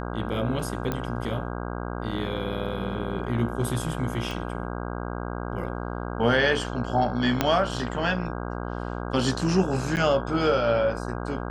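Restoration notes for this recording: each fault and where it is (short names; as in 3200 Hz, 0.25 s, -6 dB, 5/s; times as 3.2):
buzz 60 Hz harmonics 27 -32 dBFS
0.92 pop -14 dBFS
4.31 pop
7.41 pop -6 dBFS
9.96–9.97 gap 9.4 ms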